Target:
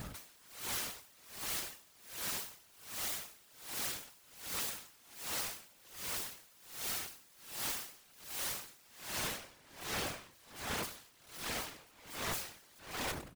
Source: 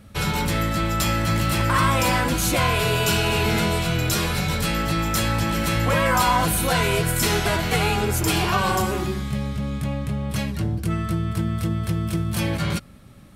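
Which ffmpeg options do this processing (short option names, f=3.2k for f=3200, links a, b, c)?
-filter_complex "[0:a]bandreject=f=5.7k:w=18,bandreject=f=101.2:t=h:w=4,bandreject=f=202.4:t=h:w=4,bandreject=f=303.6:t=h:w=4,bandreject=f=404.8:t=h:w=4,bandreject=f=506:t=h:w=4,asettb=1/sr,asplit=3[a][b][c];[a]atrim=end=10.764[d];[b]atrim=start=10.76:end=11.46,asetpts=PTS-STARTPTS,afade=t=in:d=0.004:c=qsin,afade=t=out:st=0.696:d=0.004:c=qsin,acontrast=79[e];[c]atrim=start=11.456[f];[d][e]acrossfade=d=0.004:c1=hsin:c2=qsin[g];[g][f]acrossfade=d=0.004:c1=qsin:c2=hsin,asplit=2[h][i];[i]adelay=327,lowpass=f=950:p=1,volume=-5.5dB,asplit=2[j][k];[k]adelay=327,lowpass=f=950:p=1,volume=0.25,asplit=2[l][m];[m]adelay=327,lowpass=f=950:p=1,volume=0.25[n];[j][l][n]amix=inputs=3:normalize=0[o];[h][o]amix=inputs=2:normalize=0,asoftclip=type=tanh:threshold=-22dB,acrusher=bits=7:mix=0:aa=0.000001,aeval=exprs='(mod(53.1*val(0)+1,2)-1)/53.1':c=same,afftfilt=real='hypot(re,im)*cos(2*PI*random(0))':imag='hypot(re,im)*sin(2*PI*random(1))':win_size=512:overlap=0.75,aeval=exprs='val(0)*pow(10,-27*(0.5-0.5*cos(2*PI*1.3*n/s))/20)':c=same,volume=9dB"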